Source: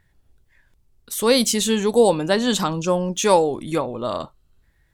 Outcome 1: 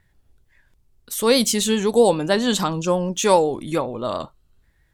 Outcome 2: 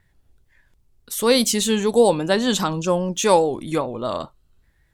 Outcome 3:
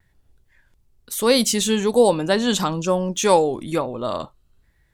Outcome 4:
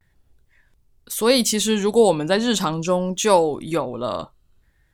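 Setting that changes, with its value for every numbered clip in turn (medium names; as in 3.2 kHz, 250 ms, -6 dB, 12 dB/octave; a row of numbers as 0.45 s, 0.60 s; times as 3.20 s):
vibrato, rate: 7.5 Hz, 5 Hz, 1.1 Hz, 0.36 Hz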